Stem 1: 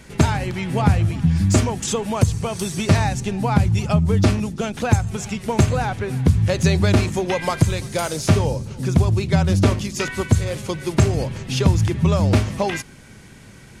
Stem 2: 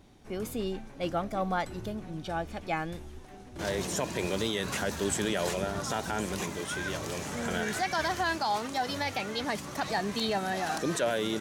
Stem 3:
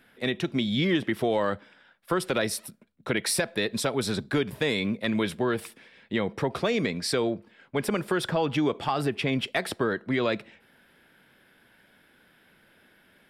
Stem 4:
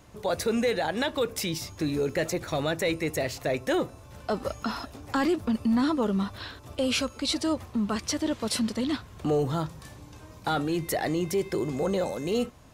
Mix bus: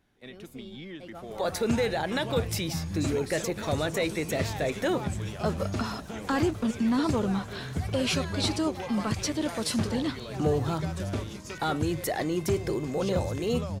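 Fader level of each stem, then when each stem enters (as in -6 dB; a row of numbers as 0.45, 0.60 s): -16.0, -14.0, -17.5, -1.5 dB; 1.50, 0.00, 0.00, 1.15 s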